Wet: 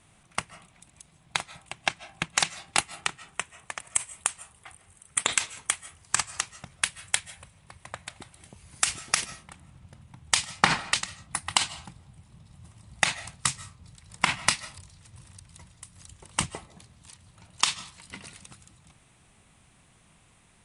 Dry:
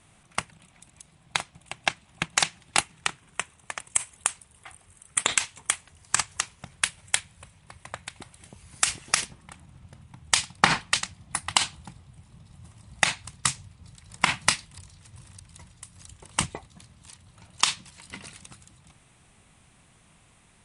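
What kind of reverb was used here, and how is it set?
digital reverb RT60 0.45 s, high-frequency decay 0.4×, pre-delay 0.11 s, DRR 17 dB; gain -1.5 dB

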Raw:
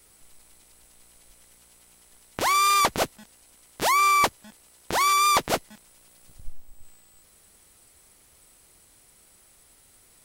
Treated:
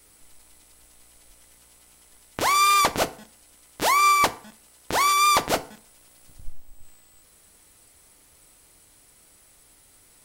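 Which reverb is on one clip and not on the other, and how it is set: FDN reverb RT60 0.47 s, low-frequency decay 0.95×, high-frequency decay 0.7×, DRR 10 dB; gain +1 dB

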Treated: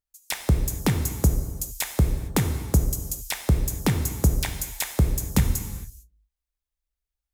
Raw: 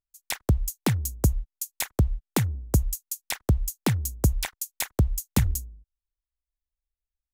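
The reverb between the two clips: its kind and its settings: non-linear reverb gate 0.48 s falling, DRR 5 dB; gain +1 dB

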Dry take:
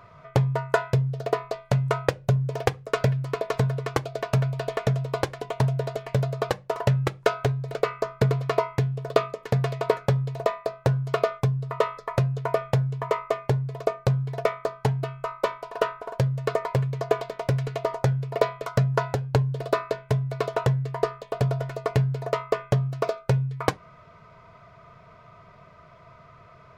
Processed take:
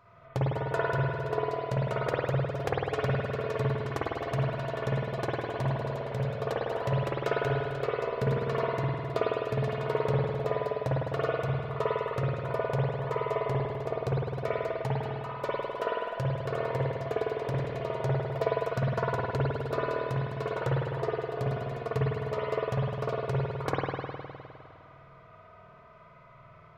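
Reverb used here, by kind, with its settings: spring tank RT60 2.3 s, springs 51 ms, chirp 60 ms, DRR -7.5 dB; gain -11 dB

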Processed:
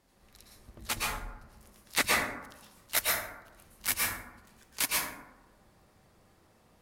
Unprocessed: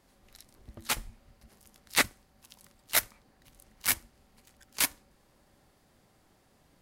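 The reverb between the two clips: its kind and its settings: plate-style reverb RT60 0.96 s, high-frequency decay 0.4×, pre-delay 0.1 s, DRR -4.5 dB; gain -3.5 dB

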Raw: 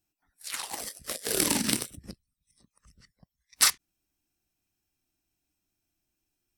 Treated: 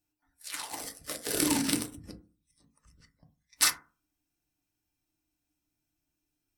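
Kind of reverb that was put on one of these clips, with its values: FDN reverb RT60 0.35 s, low-frequency decay 1.3×, high-frequency decay 0.35×, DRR 3 dB; gain -3.5 dB

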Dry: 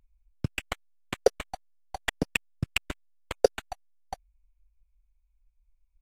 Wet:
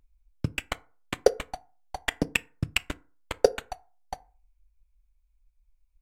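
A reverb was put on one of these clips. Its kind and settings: FDN reverb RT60 0.39 s, low-frequency decay 0.9×, high-frequency decay 0.5×, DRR 15 dB; gain +1.5 dB

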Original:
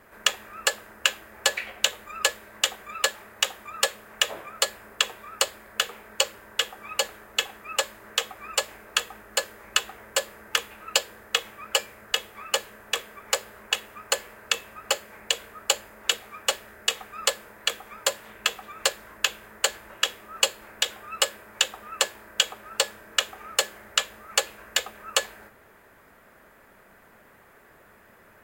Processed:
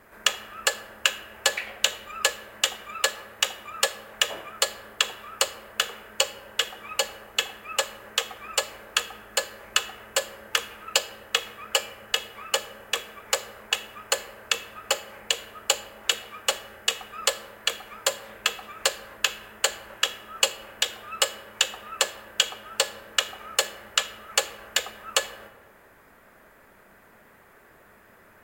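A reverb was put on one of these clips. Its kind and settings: digital reverb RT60 1.6 s, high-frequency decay 0.4×, pre-delay 0 ms, DRR 13.5 dB

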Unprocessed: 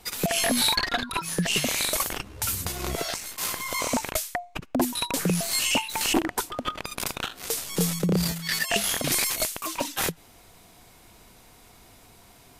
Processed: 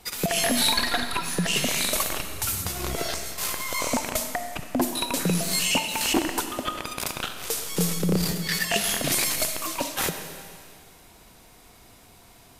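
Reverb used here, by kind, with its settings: digital reverb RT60 2.1 s, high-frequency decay 1×, pre-delay 10 ms, DRR 7 dB

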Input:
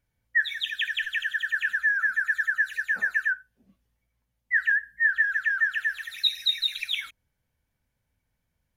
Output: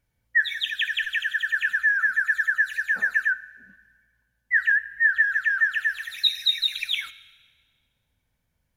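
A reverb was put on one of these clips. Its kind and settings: digital reverb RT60 1.6 s, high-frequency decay 1×, pre-delay 15 ms, DRR 18 dB; gain +2.5 dB

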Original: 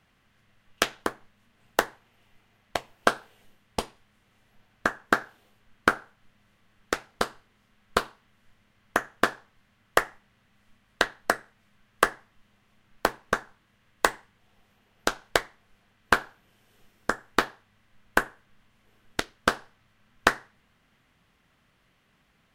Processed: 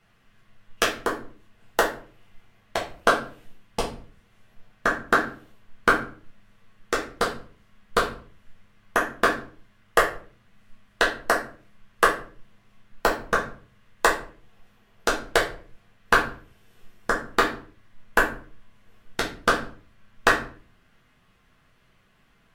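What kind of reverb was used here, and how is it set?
shoebox room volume 31 m³, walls mixed, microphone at 0.75 m; gain -1.5 dB

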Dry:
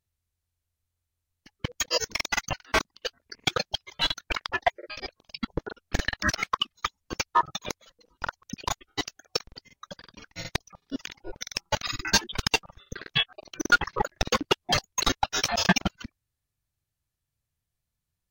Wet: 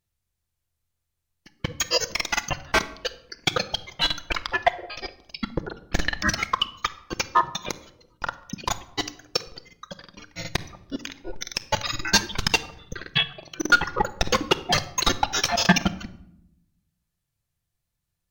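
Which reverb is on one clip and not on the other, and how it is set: shoebox room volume 2000 m³, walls furnished, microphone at 0.83 m; gain +2.5 dB

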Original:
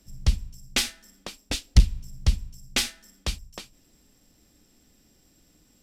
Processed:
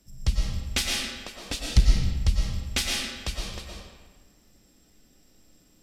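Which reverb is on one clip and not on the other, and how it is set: digital reverb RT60 1.4 s, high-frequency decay 0.75×, pre-delay 75 ms, DRR -2 dB; gain -3 dB

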